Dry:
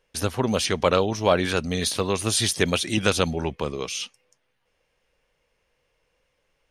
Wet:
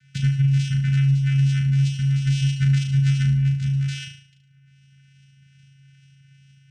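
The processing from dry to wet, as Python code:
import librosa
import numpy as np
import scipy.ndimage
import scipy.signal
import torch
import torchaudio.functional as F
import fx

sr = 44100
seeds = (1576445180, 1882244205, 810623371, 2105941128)

y = fx.spec_ripple(x, sr, per_octave=0.78, drift_hz=2.4, depth_db=19)
y = fx.vocoder(y, sr, bands=4, carrier='square', carrier_hz=137.0)
y = fx.brickwall_bandstop(y, sr, low_hz=250.0, high_hz=1300.0)
y = fx.room_flutter(y, sr, wall_m=6.2, rt60_s=0.44)
y = fx.band_squash(y, sr, depth_pct=70)
y = y * librosa.db_to_amplitude(-2.5)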